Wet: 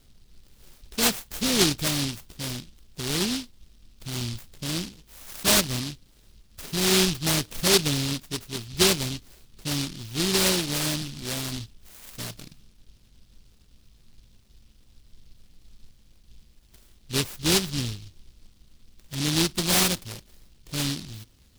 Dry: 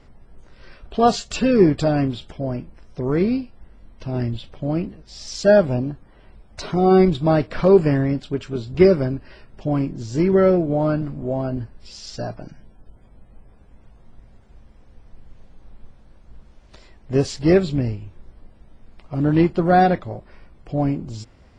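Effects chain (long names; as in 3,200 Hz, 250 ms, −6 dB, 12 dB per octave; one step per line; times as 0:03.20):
short delay modulated by noise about 3,900 Hz, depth 0.42 ms
level −7.5 dB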